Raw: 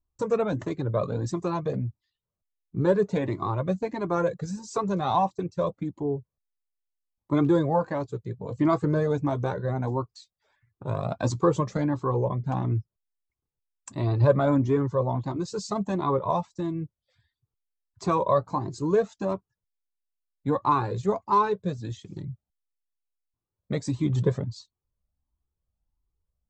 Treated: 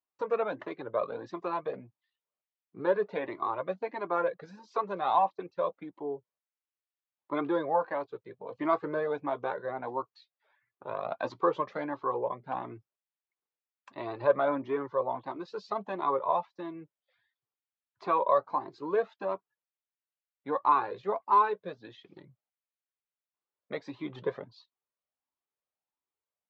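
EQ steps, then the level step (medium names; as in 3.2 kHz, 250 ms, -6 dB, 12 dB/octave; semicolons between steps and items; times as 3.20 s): band-pass 530–3600 Hz; distance through air 330 m; treble shelf 2.7 kHz +9 dB; 0.0 dB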